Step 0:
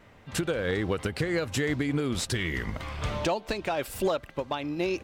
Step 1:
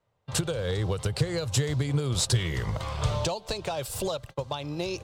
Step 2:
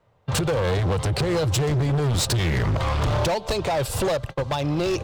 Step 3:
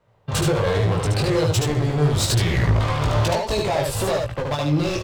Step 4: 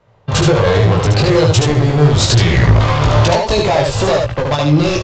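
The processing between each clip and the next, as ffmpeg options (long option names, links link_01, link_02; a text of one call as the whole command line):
ffmpeg -i in.wav -filter_complex "[0:a]agate=range=-25dB:threshold=-43dB:ratio=16:detection=peak,equalizer=frequency=125:width_type=o:width=1:gain=11,equalizer=frequency=250:width_type=o:width=1:gain=-8,equalizer=frequency=500:width_type=o:width=1:gain=7,equalizer=frequency=1000:width_type=o:width=1:gain=6,equalizer=frequency=2000:width_type=o:width=1:gain=-5,equalizer=frequency=4000:width_type=o:width=1:gain=5,equalizer=frequency=8000:width_type=o:width=1:gain=6,acrossover=split=170|3000[link_01][link_02][link_03];[link_02]acompressor=threshold=-32dB:ratio=3[link_04];[link_01][link_04][link_03]amix=inputs=3:normalize=0" out.wav
ffmpeg -i in.wav -filter_complex "[0:a]highshelf=frequency=4000:gain=-10,asplit=2[link_01][link_02];[link_02]alimiter=limit=-23dB:level=0:latency=1:release=74,volume=2dB[link_03];[link_01][link_03]amix=inputs=2:normalize=0,asoftclip=type=hard:threshold=-25dB,volume=5.5dB" out.wav
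ffmpeg -i in.wav -filter_complex "[0:a]flanger=delay=17:depth=3.3:speed=1.2,asplit=2[link_01][link_02];[link_02]aecho=0:1:74:0.668[link_03];[link_01][link_03]amix=inputs=2:normalize=0,volume=3.5dB" out.wav
ffmpeg -i in.wav -af "aresample=16000,aresample=44100,volume=8.5dB" out.wav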